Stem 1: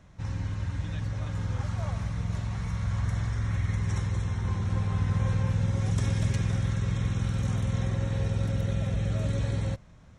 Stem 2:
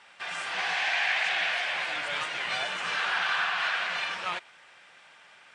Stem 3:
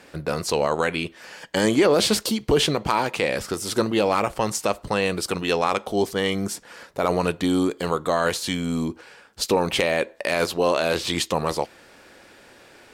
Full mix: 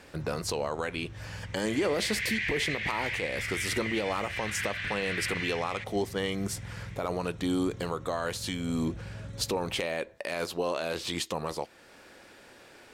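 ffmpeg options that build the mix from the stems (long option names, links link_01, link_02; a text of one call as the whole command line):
ffmpeg -i stem1.wav -i stem2.wav -i stem3.wav -filter_complex "[0:a]acompressor=threshold=-29dB:ratio=6,volume=-8.5dB[link_01];[1:a]highpass=frequency=2000:width_type=q:width=6.4,highshelf=frequency=4000:gain=10.5,adelay=1450,volume=-11.5dB[link_02];[2:a]volume=-3.5dB[link_03];[link_01][link_02][link_03]amix=inputs=3:normalize=0,alimiter=limit=-19dB:level=0:latency=1:release=367" out.wav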